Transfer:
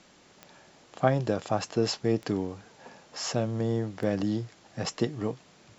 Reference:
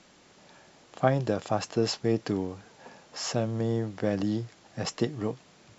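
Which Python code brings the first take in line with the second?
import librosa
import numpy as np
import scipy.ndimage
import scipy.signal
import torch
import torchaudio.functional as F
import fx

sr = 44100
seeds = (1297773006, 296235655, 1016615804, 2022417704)

y = fx.fix_declick_ar(x, sr, threshold=10.0)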